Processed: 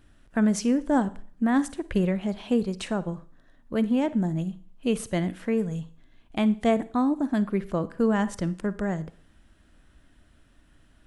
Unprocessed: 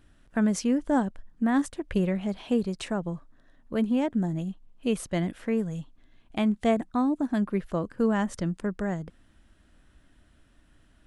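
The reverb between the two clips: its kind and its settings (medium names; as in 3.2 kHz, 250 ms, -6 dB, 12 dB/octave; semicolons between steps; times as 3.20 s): Schroeder reverb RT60 0.47 s, DRR 16 dB; trim +1.5 dB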